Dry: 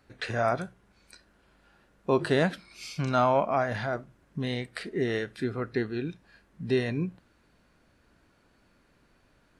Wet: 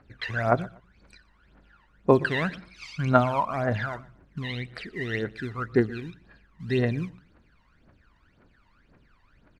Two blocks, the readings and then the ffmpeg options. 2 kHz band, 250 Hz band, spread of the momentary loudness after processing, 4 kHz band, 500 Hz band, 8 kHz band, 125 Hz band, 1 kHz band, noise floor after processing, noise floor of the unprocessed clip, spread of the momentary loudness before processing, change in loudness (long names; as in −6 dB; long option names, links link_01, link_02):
+3.5 dB, +2.0 dB, 18 LU, −0.5 dB, +1.0 dB, can't be measured, +4.0 dB, +1.5 dB, −63 dBFS, −66 dBFS, 15 LU, +2.0 dB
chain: -filter_complex "[0:a]acrusher=bits=6:mode=log:mix=0:aa=0.000001,crystalizer=i=7:c=0,aphaser=in_gain=1:out_gain=1:delay=1.1:decay=0.77:speed=1.9:type=triangular,lowpass=1800,asplit=2[link_01][link_02];[link_02]aecho=0:1:121|242:0.0794|0.0207[link_03];[link_01][link_03]amix=inputs=2:normalize=0,volume=-4dB"